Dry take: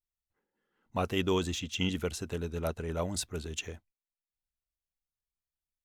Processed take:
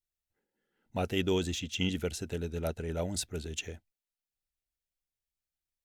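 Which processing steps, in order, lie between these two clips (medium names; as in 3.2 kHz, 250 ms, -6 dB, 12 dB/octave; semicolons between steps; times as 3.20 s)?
peaking EQ 1.1 kHz -14.5 dB 0.32 oct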